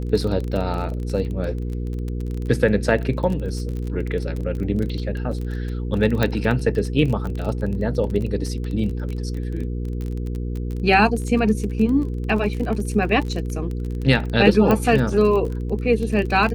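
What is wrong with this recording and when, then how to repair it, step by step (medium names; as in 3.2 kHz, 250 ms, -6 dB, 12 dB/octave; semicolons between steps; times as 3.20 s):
crackle 24 per s -26 dBFS
hum 60 Hz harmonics 8 -26 dBFS
6.23 s: pop -7 dBFS
14.71 s: pop -7 dBFS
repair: de-click; de-hum 60 Hz, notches 8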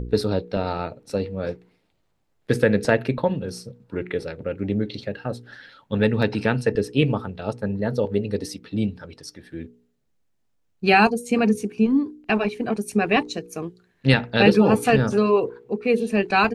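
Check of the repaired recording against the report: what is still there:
6.23 s: pop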